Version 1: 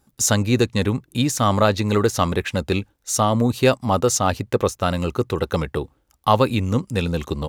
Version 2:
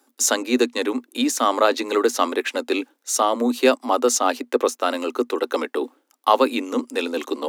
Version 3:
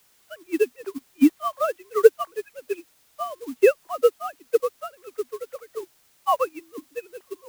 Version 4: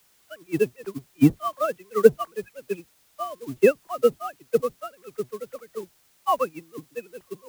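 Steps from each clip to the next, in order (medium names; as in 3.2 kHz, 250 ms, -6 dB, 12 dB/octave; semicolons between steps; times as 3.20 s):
Chebyshev high-pass 240 Hz, order 8; reverse; upward compressor, threshold -21 dBFS; reverse; trim +1 dB
formants replaced by sine waves; added noise white -37 dBFS; upward expansion 2.5:1, over -28 dBFS; trim +3.5 dB
octave divider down 1 oct, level -4 dB; trim -1 dB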